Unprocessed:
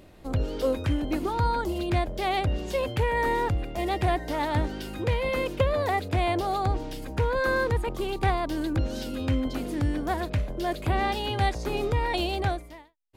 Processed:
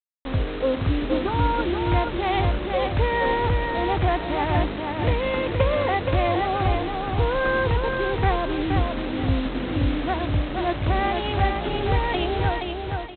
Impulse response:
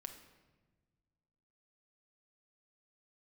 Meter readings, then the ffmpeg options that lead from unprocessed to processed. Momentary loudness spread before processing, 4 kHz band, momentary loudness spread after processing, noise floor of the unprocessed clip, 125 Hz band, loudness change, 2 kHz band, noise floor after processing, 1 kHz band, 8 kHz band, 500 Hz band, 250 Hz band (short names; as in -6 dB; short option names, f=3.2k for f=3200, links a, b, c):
5 LU, +3.5 dB, 4 LU, -46 dBFS, +4.0 dB, +4.0 dB, +4.0 dB, -30 dBFS, +4.0 dB, under -35 dB, +4.0 dB, +4.0 dB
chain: -af "afwtdn=0.0178,aresample=8000,acrusher=bits=5:mix=0:aa=0.000001,aresample=44100,aecho=1:1:473|946|1419|1892:0.596|0.197|0.0649|0.0214,volume=2.5dB"